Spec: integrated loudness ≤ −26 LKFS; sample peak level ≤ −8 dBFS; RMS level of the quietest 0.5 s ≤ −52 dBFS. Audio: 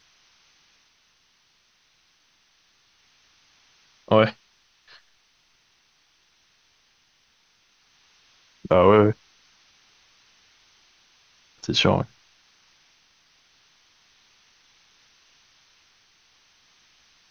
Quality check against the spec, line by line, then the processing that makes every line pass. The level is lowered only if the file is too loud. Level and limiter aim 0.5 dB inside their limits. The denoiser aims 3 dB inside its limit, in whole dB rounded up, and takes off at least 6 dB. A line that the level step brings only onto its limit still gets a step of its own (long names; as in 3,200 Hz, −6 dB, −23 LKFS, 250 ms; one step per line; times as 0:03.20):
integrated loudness −20.5 LKFS: out of spec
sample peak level −4.0 dBFS: out of spec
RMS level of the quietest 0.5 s −64 dBFS: in spec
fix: level −6 dB